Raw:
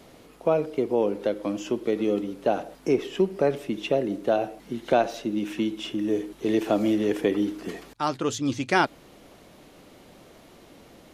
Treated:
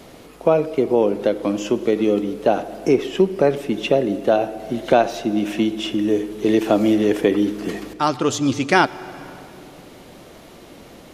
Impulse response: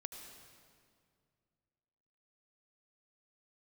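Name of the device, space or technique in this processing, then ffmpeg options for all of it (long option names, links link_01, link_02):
ducked reverb: -filter_complex "[0:a]asplit=3[link_01][link_02][link_03];[1:a]atrim=start_sample=2205[link_04];[link_02][link_04]afir=irnorm=-1:irlink=0[link_05];[link_03]apad=whole_len=491149[link_06];[link_05][link_06]sidechaincompress=threshold=-24dB:ratio=8:attack=49:release=740,volume=-2.5dB[link_07];[link_01][link_07]amix=inputs=2:normalize=0,volume=4.5dB"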